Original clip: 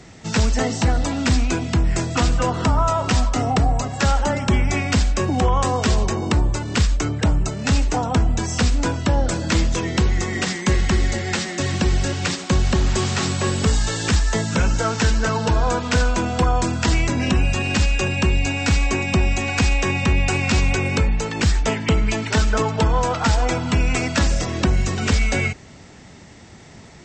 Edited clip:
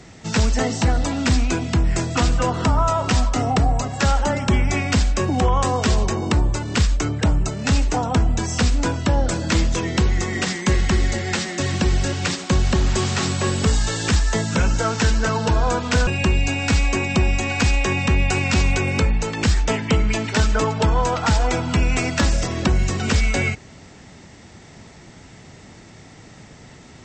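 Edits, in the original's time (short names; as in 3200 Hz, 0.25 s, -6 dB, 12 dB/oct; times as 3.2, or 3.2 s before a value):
16.07–18.05 cut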